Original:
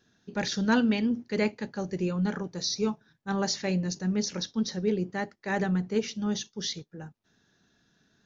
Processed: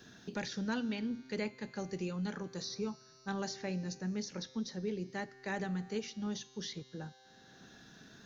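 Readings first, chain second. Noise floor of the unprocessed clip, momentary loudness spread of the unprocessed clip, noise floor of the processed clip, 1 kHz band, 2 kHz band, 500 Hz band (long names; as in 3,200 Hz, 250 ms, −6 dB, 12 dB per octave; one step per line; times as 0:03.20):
−70 dBFS, 9 LU, −61 dBFS, −9.5 dB, −8.5 dB, −9.5 dB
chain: tuned comb filter 130 Hz, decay 1.9 s, mix 60%
multiband upward and downward compressor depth 70%
level −2 dB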